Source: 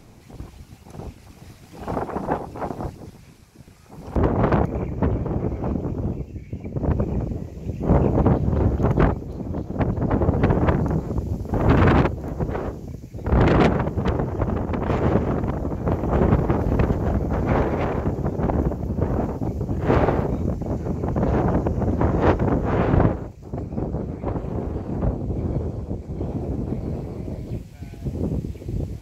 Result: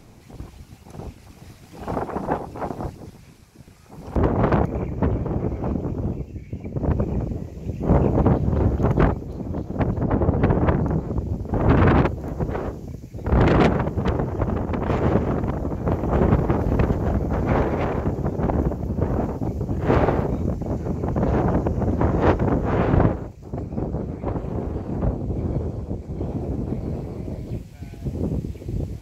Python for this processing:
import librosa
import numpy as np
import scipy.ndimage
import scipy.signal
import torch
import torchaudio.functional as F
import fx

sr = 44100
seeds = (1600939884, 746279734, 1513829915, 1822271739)

y = fx.high_shelf(x, sr, hz=4000.0, db=-7.5, at=(10.03, 12.05))